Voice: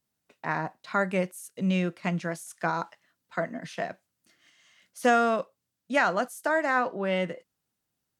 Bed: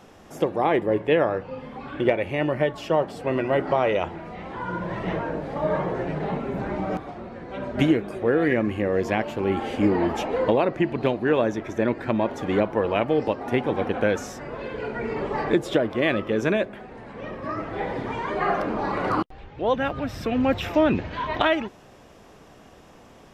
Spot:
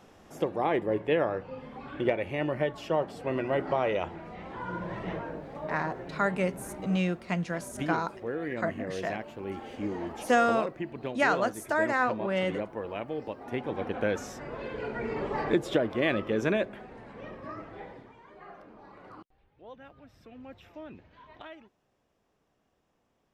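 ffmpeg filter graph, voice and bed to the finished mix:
ffmpeg -i stem1.wav -i stem2.wav -filter_complex "[0:a]adelay=5250,volume=-1.5dB[link_01];[1:a]volume=2.5dB,afade=type=out:start_time=4.84:duration=0.83:silence=0.446684,afade=type=in:start_time=13.28:duration=1.16:silence=0.375837,afade=type=out:start_time=16.76:duration=1.37:silence=0.0944061[link_02];[link_01][link_02]amix=inputs=2:normalize=0" out.wav

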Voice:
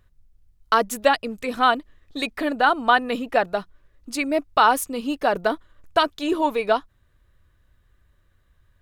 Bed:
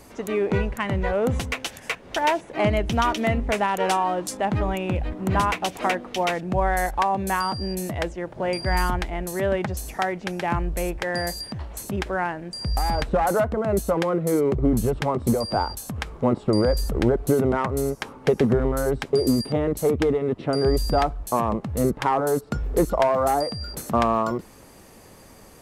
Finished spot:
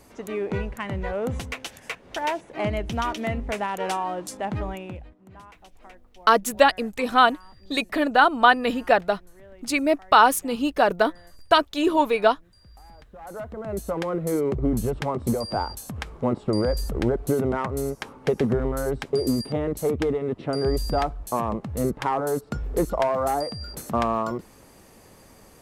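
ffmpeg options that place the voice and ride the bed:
ffmpeg -i stem1.wav -i stem2.wav -filter_complex "[0:a]adelay=5550,volume=1.5dB[link_01];[1:a]volume=17.5dB,afade=type=out:start_time=4.59:duration=0.56:silence=0.0944061,afade=type=in:start_time=13.15:duration=1.08:silence=0.0749894[link_02];[link_01][link_02]amix=inputs=2:normalize=0" out.wav

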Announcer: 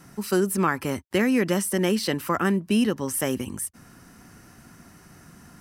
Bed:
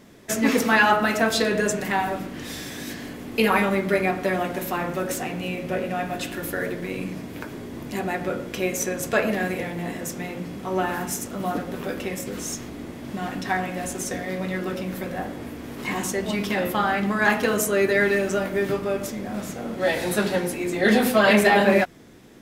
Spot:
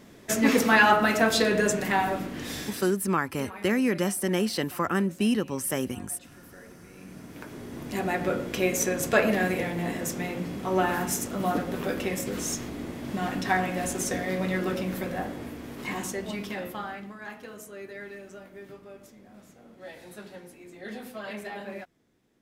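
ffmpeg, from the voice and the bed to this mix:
ffmpeg -i stem1.wav -i stem2.wav -filter_complex "[0:a]adelay=2500,volume=-3dB[link_01];[1:a]volume=21dB,afade=type=out:start_time=2.6:duration=0.37:silence=0.0891251,afade=type=in:start_time=6.93:duration=1.32:silence=0.0794328,afade=type=out:start_time=14.66:duration=2.53:silence=0.0891251[link_02];[link_01][link_02]amix=inputs=2:normalize=0" out.wav

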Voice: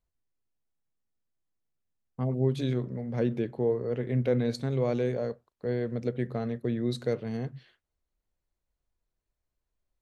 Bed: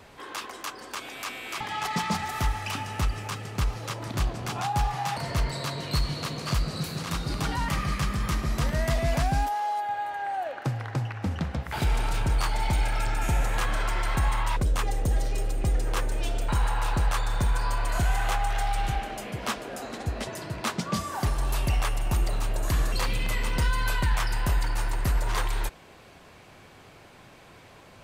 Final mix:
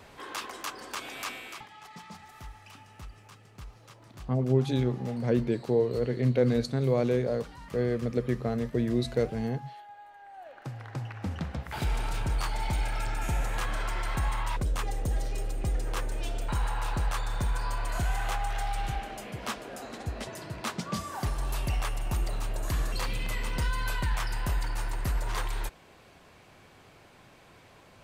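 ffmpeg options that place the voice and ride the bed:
ffmpeg -i stem1.wav -i stem2.wav -filter_complex "[0:a]adelay=2100,volume=2dB[link_01];[1:a]volume=13dB,afade=type=out:start_time=1.26:duration=0.43:silence=0.133352,afade=type=in:start_time=10.31:duration=0.96:silence=0.199526[link_02];[link_01][link_02]amix=inputs=2:normalize=0" out.wav

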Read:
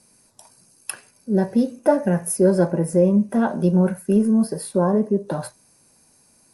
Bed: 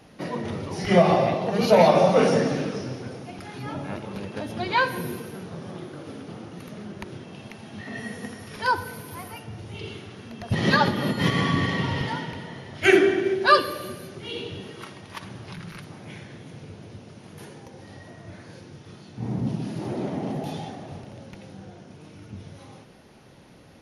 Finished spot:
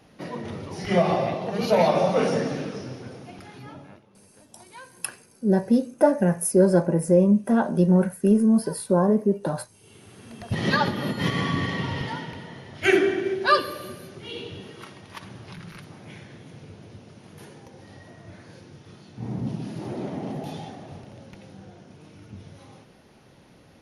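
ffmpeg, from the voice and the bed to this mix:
ffmpeg -i stem1.wav -i stem2.wav -filter_complex "[0:a]adelay=4150,volume=-1dB[link_01];[1:a]volume=17dB,afade=type=out:start_time=3.34:duration=0.71:silence=0.105925,afade=type=in:start_time=9.82:duration=0.53:silence=0.0944061[link_02];[link_01][link_02]amix=inputs=2:normalize=0" out.wav

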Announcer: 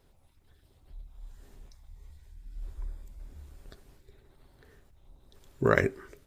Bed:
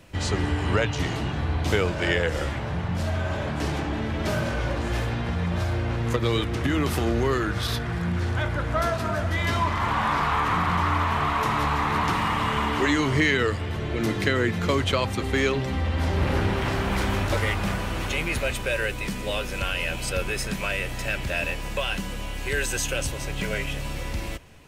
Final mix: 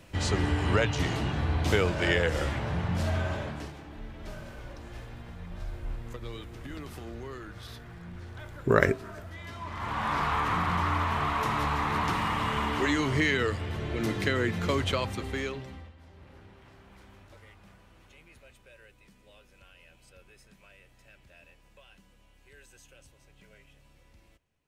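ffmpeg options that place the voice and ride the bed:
ffmpeg -i stem1.wav -i stem2.wav -filter_complex "[0:a]adelay=3050,volume=1.5dB[link_01];[1:a]volume=11dB,afade=type=out:start_time=3.17:duration=0.56:silence=0.16788,afade=type=in:start_time=9.59:duration=0.6:silence=0.223872,afade=type=out:start_time=14.86:duration=1.08:silence=0.0595662[link_02];[link_01][link_02]amix=inputs=2:normalize=0" out.wav

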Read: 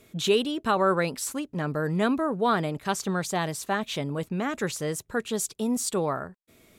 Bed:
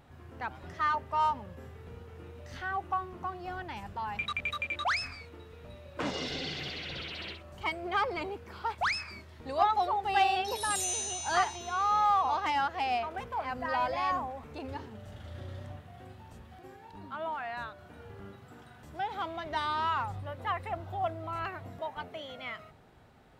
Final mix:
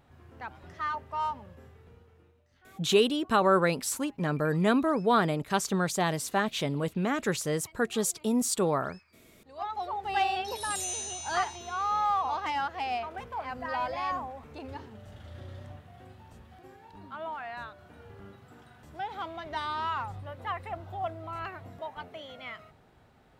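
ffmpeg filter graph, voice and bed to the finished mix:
ffmpeg -i stem1.wav -i stem2.wav -filter_complex "[0:a]adelay=2650,volume=0dB[link_01];[1:a]volume=18dB,afade=type=out:start_time=1.47:duration=0.99:silence=0.105925,afade=type=in:start_time=9.41:duration=0.73:silence=0.0841395[link_02];[link_01][link_02]amix=inputs=2:normalize=0" out.wav

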